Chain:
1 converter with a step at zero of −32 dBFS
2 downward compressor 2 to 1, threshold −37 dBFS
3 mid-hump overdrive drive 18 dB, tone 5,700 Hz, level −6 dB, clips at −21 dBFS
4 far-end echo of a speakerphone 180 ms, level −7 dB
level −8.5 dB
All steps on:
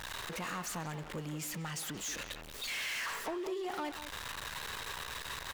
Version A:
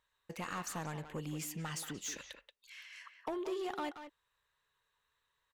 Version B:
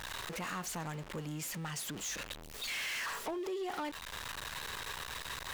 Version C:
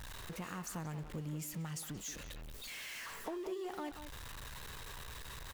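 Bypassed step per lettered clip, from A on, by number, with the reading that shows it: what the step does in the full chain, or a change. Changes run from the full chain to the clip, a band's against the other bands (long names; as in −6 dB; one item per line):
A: 1, distortion level −9 dB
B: 4, echo-to-direct ratio −11.5 dB to none audible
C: 3, change in crest factor +3.5 dB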